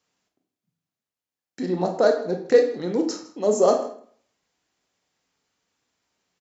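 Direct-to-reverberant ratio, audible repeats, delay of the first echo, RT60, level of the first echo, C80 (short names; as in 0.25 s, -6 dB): 4.0 dB, 1, 0.159 s, 0.55 s, -19.5 dB, 11.5 dB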